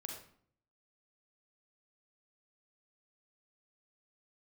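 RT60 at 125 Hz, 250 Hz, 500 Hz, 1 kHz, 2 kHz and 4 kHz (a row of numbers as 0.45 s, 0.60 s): 0.80 s, 0.75 s, 0.60 s, 0.55 s, 0.50 s, 0.40 s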